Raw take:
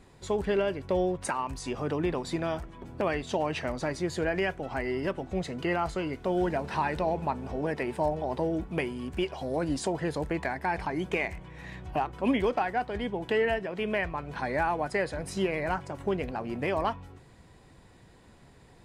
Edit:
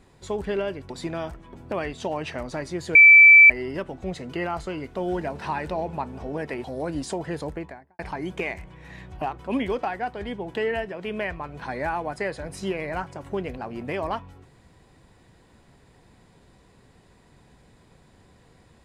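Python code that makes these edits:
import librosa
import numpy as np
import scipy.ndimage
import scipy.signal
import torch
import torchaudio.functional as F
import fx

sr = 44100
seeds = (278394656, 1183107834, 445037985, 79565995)

y = fx.studio_fade_out(x, sr, start_s=10.13, length_s=0.6)
y = fx.edit(y, sr, fx.cut(start_s=0.9, length_s=1.29),
    fx.bleep(start_s=4.24, length_s=0.55, hz=2320.0, db=-7.0),
    fx.cut(start_s=7.93, length_s=1.45), tone=tone)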